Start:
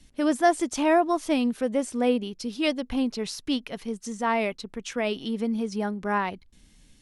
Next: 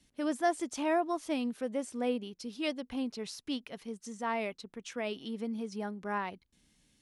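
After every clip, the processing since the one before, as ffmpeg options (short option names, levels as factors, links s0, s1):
-af "highpass=f=110:p=1,volume=0.376"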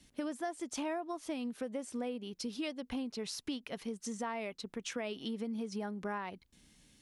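-af "acompressor=threshold=0.01:ratio=10,volume=1.78"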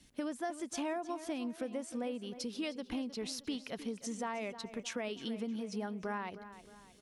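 -filter_complex "[0:a]asplit=2[s0][s1];[s1]adelay=311,lowpass=f=4500:p=1,volume=0.224,asplit=2[s2][s3];[s3]adelay=311,lowpass=f=4500:p=1,volume=0.45,asplit=2[s4][s5];[s5]adelay=311,lowpass=f=4500:p=1,volume=0.45,asplit=2[s6][s7];[s7]adelay=311,lowpass=f=4500:p=1,volume=0.45[s8];[s0][s2][s4][s6][s8]amix=inputs=5:normalize=0"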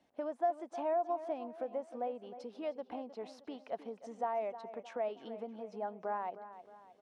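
-af "bandpass=f=710:t=q:w=2.9:csg=0,volume=2.51"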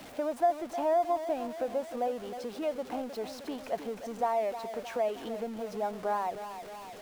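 -af "aeval=exprs='val(0)+0.5*0.00422*sgn(val(0))':c=same,volume=1.88"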